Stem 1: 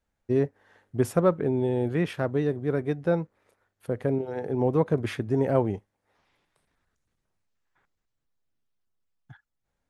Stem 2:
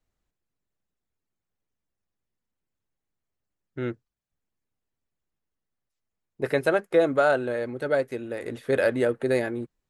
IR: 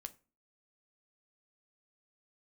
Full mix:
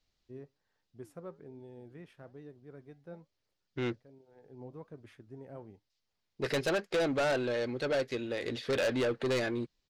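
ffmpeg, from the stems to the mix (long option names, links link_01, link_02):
-filter_complex "[0:a]flanger=delay=3.2:depth=4.9:regen=85:speed=1.2:shape=sinusoidal,volume=-19.5dB[link_01];[1:a]firequalizer=gain_entry='entry(1400,0);entry(2200,5);entry(3200,10);entry(4700,14);entry(9100,-8)':delay=0.05:min_phase=1,volume=-1.5dB,asplit=2[link_02][link_03];[link_03]apad=whole_len=436252[link_04];[link_01][link_04]sidechaincompress=threshold=-38dB:ratio=8:attack=38:release=855[link_05];[link_05][link_02]amix=inputs=2:normalize=0,asoftclip=type=tanh:threshold=-26dB"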